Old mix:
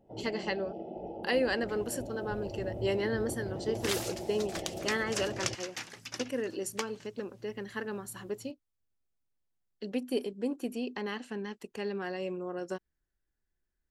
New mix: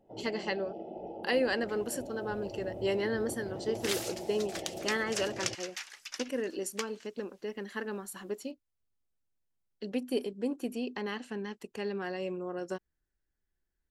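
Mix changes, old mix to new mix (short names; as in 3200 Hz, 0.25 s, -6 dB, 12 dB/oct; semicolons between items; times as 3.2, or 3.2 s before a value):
first sound: add low shelf 140 Hz -9.5 dB; second sound: add HPF 1200 Hz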